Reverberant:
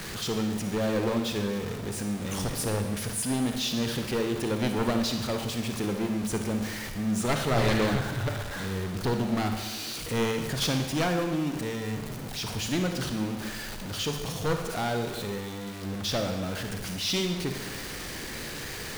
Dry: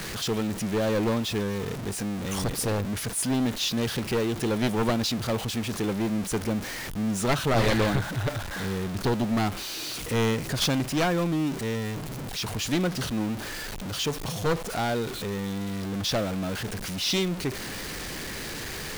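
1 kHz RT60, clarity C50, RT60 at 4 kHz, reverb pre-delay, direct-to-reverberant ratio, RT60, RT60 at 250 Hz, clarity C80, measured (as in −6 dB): 1.2 s, 5.5 dB, 1.2 s, 36 ms, 5.0 dB, 1.2 s, 1.2 s, 8.0 dB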